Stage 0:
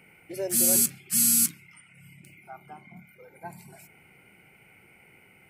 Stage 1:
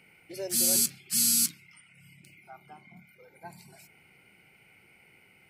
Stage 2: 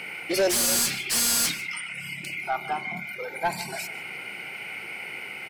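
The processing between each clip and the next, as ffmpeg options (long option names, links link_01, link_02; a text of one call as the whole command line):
ffmpeg -i in.wav -af "equalizer=frequency=4400:width_type=o:width=1.1:gain=10,volume=-5dB" out.wav
ffmpeg -i in.wav -filter_complex "[0:a]asplit=2[link_01][link_02];[link_02]highpass=frequency=720:poles=1,volume=31dB,asoftclip=type=tanh:threshold=-12dB[link_03];[link_01][link_03]amix=inputs=2:normalize=0,lowpass=frequency=4200:poles=1,volume=-6dB,asplit=2[link_04][link_05];[link_05]adelay=151.6,volume=-17dB,highshelf=frequency=4000:gain=-3.41[link_06];[link_04][link_06]amix=inputs=2:normalize=0" out.wav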